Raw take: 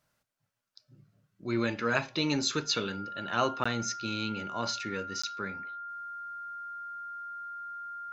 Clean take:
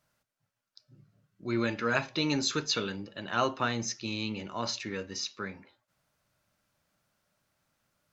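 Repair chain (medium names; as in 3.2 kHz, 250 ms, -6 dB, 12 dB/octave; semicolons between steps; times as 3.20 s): band-stop 1.4 kHz, Q 30; interpolate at 3.64/5.22 s, 15 ms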